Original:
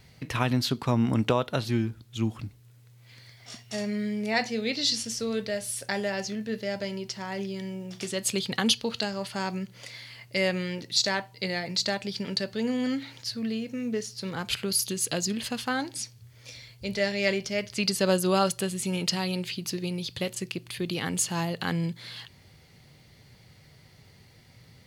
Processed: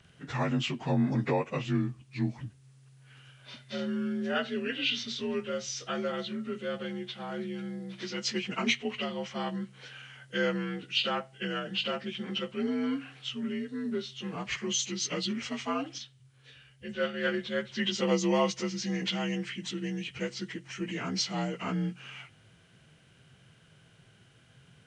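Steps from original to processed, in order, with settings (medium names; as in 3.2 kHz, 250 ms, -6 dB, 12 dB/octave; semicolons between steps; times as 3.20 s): frequency axis rescaled in octaves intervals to 86%; 15.98–17.34 s: upward expansion 1.5:1, over -35 dBFS; trim -2 dB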